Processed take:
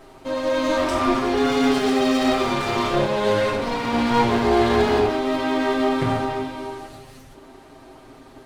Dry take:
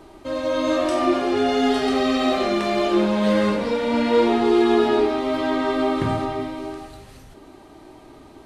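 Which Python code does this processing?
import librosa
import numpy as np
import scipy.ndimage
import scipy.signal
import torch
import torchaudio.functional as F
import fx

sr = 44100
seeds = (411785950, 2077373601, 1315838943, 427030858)

y = fx.lower_of_two(x, sr, delay_ms=7.6)
y = y * 10.0 ** (1.5 / 20.0)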